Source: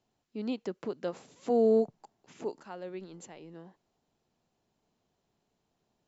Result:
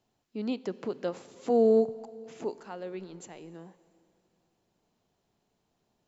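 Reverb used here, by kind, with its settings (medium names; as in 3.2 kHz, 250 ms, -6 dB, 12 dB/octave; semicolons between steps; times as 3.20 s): plate-style reverb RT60 2.7 s, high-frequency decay 0.95×, DRR 16.5 dB; trim +2 dB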